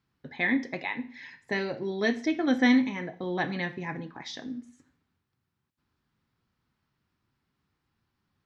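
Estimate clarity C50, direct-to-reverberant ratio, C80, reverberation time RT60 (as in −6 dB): 16.0 dB, 11.5 dB, 20.0 dB, 0.55 s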